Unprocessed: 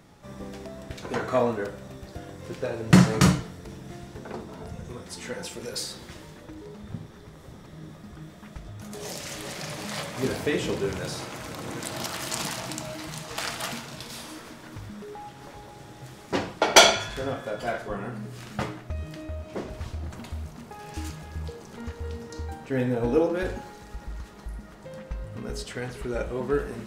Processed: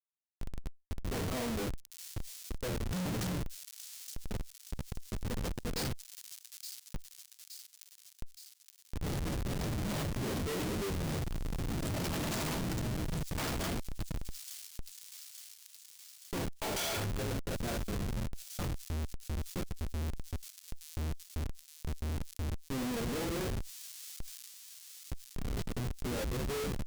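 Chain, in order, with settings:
high-pass filter 57 Hz 12 dB per octave
hum removal 145.3 Hz, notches 3
flanger 0.93 Hz, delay 9.1 ms, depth 5.1 ms, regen +7%
comparator with hysteresis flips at −33.5 dBFS
high-shelf EQ 2,300 Hz +8 dB
delay with a high-pass on its return 870 ms, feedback 39%, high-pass 5,100 Hz, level −18 dB
brickwall limiter −27 dBFS, peak gain reduction 7 dB
low-shelf EQ 470 Hz +7 dB
envelope flattener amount 50%
level −3 dB

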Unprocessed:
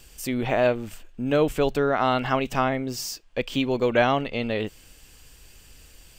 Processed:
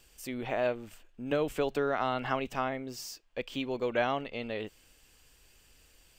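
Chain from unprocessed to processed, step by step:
bass and treble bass −5 dB, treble −2 dB
0:01.31–0:02.48: multiband upward and downward compressor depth 100%
level −8.5 dB

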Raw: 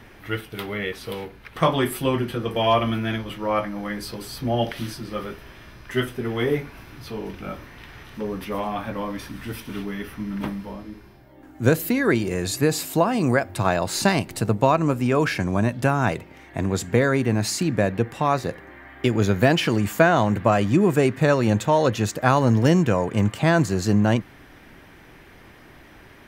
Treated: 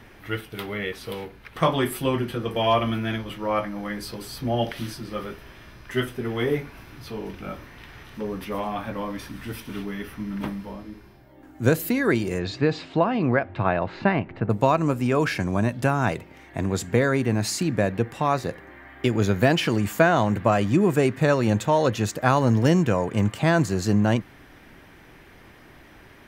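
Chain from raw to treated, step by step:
0:12.38–0:14.49: low-pass filter 4,600 Hz → 2,200 Hz 24 dB per octave
level −1.5 dB

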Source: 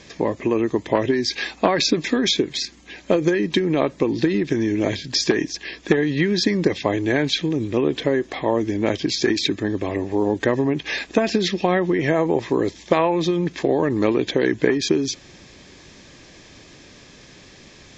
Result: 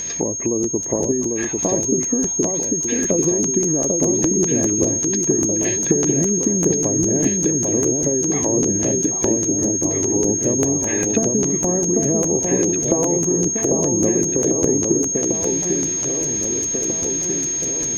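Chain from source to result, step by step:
treble cut that deepens with the level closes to 490 Hz, closed at −18.5 dBFS
noise gate −45 dBFS, range −12 dB
upward compression, threshold −28 dBFS
steady tone 6,500 Hz −24 dBFS
delay that swaps between a low-pass and a high-pass 796 ms, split 1,100 Hz, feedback 77%, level −3 dB
regular buffer underruns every 0.20 s, samples 512, repeat, from 0:00.62

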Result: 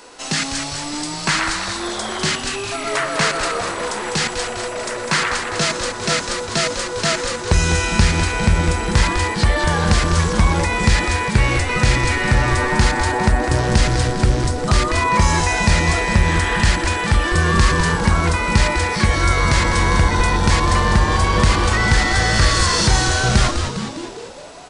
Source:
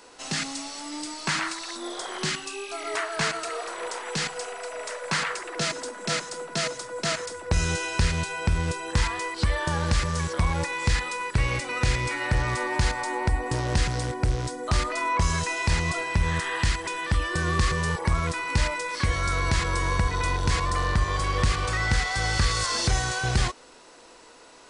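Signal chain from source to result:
echo with shifted repeats 202 ms, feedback 59%, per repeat −130 Hz, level −7 dB
level +8 dB

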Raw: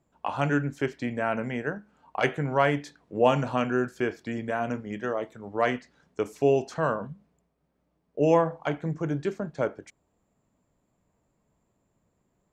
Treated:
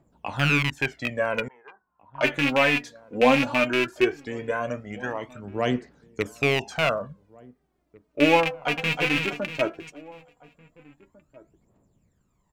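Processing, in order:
loose part that buzzes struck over −30 dBFS, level −14 dBFS
phase shifter 0.17 Hz, delay 4.3 ms, feedback 67%
0:01.48–0:02.21: resonant band-pass 1,000 Hz, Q 9.4
slap from a distant wall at 300 metres, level −23 dB
0:08.45–0:09.01: delay throw 320 ms, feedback 40%, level −4.5 dB

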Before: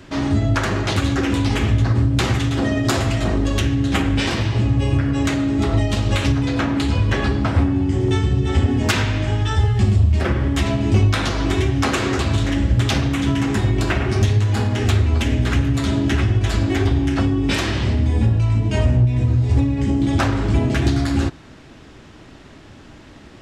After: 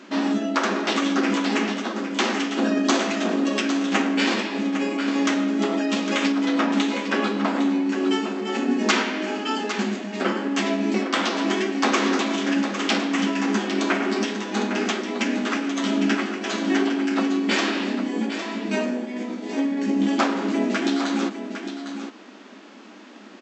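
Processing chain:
single-tap delay 806 ms −9.5 dB
formants moved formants −2 semitones
brick-wall band-pass 190–8,100 Hz

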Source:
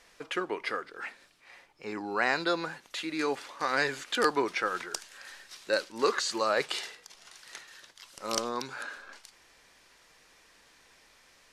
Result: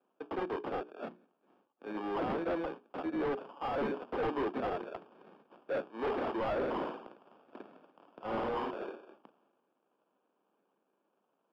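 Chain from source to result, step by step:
mu-law and A-law mismatch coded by A
0:06.53–0:08.71: flutter between parallel walls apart 9 metres, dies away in 0.74 s
decimation without filtering 22×
soft clipping −24 dBFS, distortion −11 dB
high-pass filter 220 Hz 24 dB per octave
high-shelf EQ 3,500 Hz −6.5 dB
mains-hum notches 60/120/180/240/300/360/420 Hz
hard clipping −35.5 dBFS, distortion −6 dB
high-frequency loss of the air 370 metres
multiband upward and downward expander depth 40%
level +6 dB

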